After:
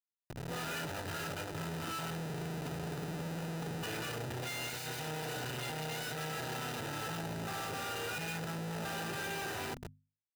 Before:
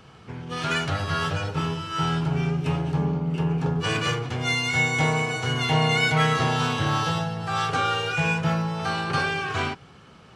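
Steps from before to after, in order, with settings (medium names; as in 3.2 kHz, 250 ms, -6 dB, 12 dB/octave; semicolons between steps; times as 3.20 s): fade-in on the opening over 1.23 s; bit crusher 7-bit; valve stage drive 26 dB, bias 0.75; compression 16:1, threshold -33 dBFS, peak gain reduction 7.5 dB; Schmitt trigger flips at -42 dBFS; hum notches 50/100/150/200/250 Hz; comb of notches 1.1 kHz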